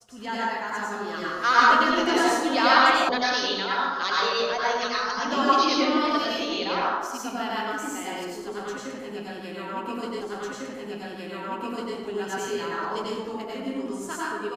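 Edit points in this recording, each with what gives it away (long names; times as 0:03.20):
0:03.09: cut off before it has died away
0:10.21: the same again, the last 1.75 s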